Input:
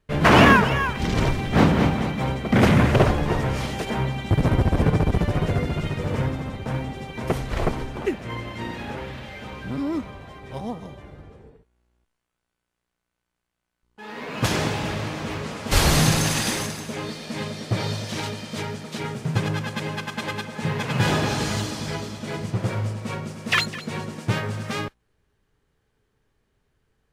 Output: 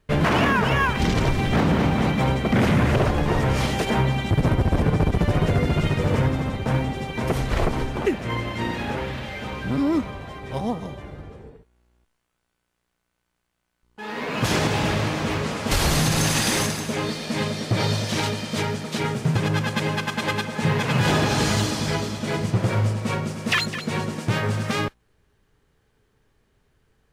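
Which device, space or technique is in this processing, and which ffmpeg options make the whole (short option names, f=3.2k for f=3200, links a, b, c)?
stacked limiters: -af "alimiter=limit=-9.5dB:level=0:latency=1:release=485,alimiter=limit=-16dB:level=0:latency=1:release=82,volume=5dB"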